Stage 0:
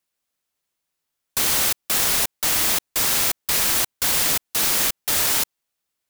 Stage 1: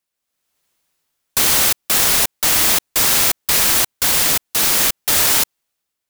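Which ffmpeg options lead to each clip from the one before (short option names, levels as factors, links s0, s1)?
-af "dynaudnorm=f=130:g=7:m=4.22,volume=0.891"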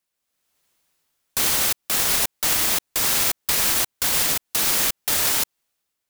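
-af "alimiter=limit=0.316:level=0:latency=1:release=176"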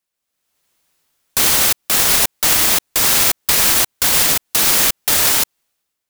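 -af "dynaudnorm=f=330:g=5:m=2.51"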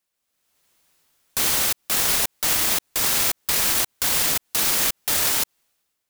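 -af "alimiter=limit=0.251:level=0:latency=1:release=68,volume=1.12"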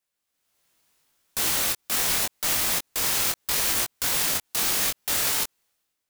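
-af "flanger=delay=17.5:depth=5.9:speed=0.77"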